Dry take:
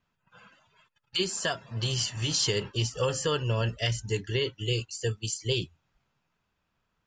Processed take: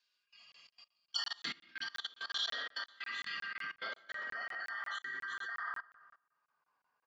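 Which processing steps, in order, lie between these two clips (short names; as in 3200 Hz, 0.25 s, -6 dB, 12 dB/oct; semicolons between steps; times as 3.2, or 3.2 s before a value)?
four-band scrambler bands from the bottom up 2143; speakerphone echo 0.1 s, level -6 dB; treble ducked by the level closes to 1300 Hz, closed at -27 dBFS; HPF 120 Hz; high shelf 4300 Hz +4.5 dB; shoebox room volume 750 m³, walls mixed, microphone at 1.7 m; band-pass sweep 3500 Hz -> 1000 Hz, 3.52–6.86; level quantiser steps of 22 dB; band shelf 2000 Hz -9.5 dB 1.2 oct; crackling interface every 0.18 s, samples 1024, zero, from 0.52; gain +11.5 dB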